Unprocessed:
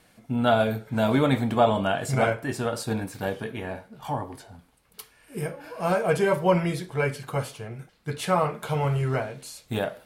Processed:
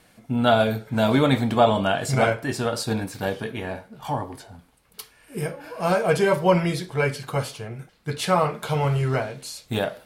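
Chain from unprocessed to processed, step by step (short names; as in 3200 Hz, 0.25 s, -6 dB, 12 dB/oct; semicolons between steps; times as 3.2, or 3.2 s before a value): dynamic EQ 4600 Hz, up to +5 dB, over -51 dBFS, Q 1.3; gain +2.5 dB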